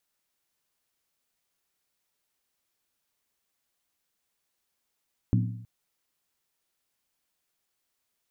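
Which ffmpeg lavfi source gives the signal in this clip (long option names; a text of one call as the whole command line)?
ffmpeg -f lavfi -i "aevalsrc='0.112*pow(10,-3*t/0.77)*sin(2*PI*114*t)+0.0708*pow(10,-3*t/0.61)*sin(2*PI*181.7*t)+0.0447*pow(10,-3*t/0.527)*sin(2*PI*243.5*t)+0.0282*pow(10,-3*t/0.508)*sin(2*PI*261.7*t)+0.0178*pow(10,-3*t/0.473)*sin(2*PI*302.4*t)':duration=0.32:sample_rate=44100" out.wav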